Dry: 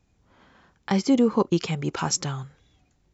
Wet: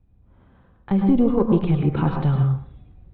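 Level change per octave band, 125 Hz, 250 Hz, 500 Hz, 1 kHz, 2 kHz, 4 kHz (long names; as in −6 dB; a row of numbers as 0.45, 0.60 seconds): +10.5 dB, +4.5 dB, +2.0 dB, 0.0 dB, −4.0 dB, below −10 dB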